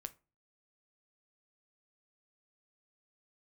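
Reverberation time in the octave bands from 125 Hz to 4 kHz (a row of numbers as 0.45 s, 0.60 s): 0.50 s, 0.40 s, 0.35 s, 0.30 s, 0.25 s, 0.20 s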